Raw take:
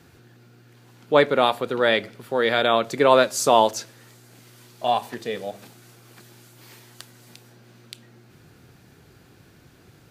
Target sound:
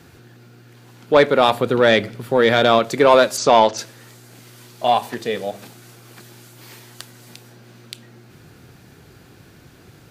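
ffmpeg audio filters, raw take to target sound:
-filter_complex "[0:a]asettb=1/sr,asplit=3[a][b][c];[a]atrim=end=1.484[d];[b]atrim=start=1.48:end=2.79,asetpts=PTS-STARTPTS,afade=t=in:d=0.004:c=qsin,afade=t=out:st=1.306:d=0.004:c=qsin,lowshelf=f=220:g=9.5[e];[c]atrim=start=2.786[f];[d][e]acrossfade=d=0.004:c1=hsin:c2=qsin[g];[g][f]acrossfade=d=0.004:c1=qsin:c2=hsin,asplit=3[h][i][j];[h]afade=t=out:st=3.36:d=0.02[k];[i]lowpass=f=5.8k:w=0.5412,lowpass=f=5.8k:w=1.3066,afade=t=in:st=3.36:d=0.02,afade=t=out:st=3.77:d=0.02[l];[j]afade=t=in:st=3.77:d=0.02[m];[k][l][m]amix=inputs=3:normalize=0,acontrast=69,volume=-1dB"

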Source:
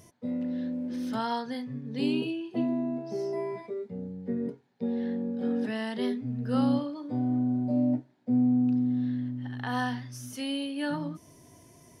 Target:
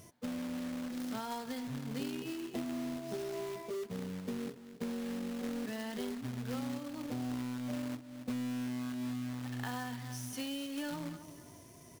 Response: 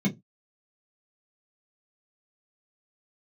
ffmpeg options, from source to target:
-af "aecho=1:1:273|546:0.106|0.0318,acrusher=bits=2:mode=log:mix=0:aa=0.000001,acompressor=threshold=-35dB:ratio=6,volume=-1dB"

